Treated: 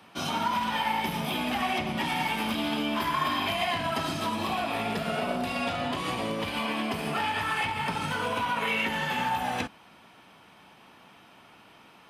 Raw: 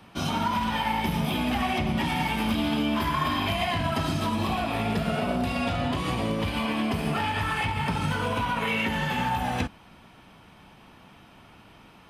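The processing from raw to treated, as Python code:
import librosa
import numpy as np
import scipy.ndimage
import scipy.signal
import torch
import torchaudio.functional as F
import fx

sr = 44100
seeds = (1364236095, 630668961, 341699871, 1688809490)

y = fx.highpass(x, sr, hz=350.0, slope=6)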